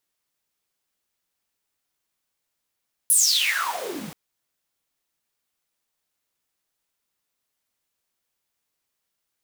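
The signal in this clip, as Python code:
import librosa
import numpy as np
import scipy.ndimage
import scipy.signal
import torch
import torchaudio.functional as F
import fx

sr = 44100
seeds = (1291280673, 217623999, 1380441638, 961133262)

y = fx.riser_noise(sr, seeds[0], length_s=1.03, colour='pink', kind='highpass', start_hz=11000.0, end_hz=150.0, q=11.0, swell_db=-21.5, law='exponential')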